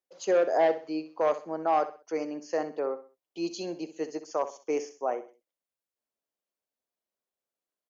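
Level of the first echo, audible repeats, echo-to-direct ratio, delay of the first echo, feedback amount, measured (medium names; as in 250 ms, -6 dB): -13.0 dB, 3, -12.5 dB, 64 ms, 33%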